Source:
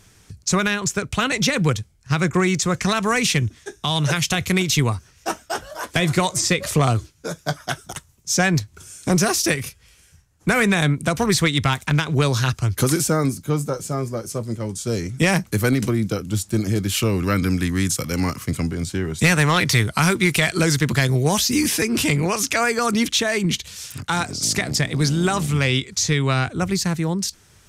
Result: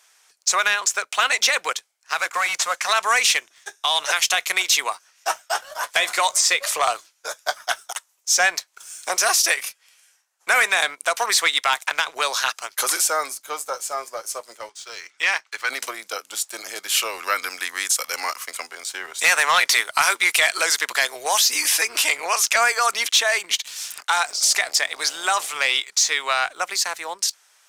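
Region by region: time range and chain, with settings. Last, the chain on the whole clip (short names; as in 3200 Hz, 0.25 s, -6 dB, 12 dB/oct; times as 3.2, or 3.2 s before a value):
2.14–2.89 CVSD 64 kbps + notch 370 Hz, Q 5.1
14.69–15.7 BPF 390–4200 Hz + bell 600 Hz -11 dB 1.1 oct
whole clip: HPF 670 Hz 24 dB/oct; sample leveller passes 1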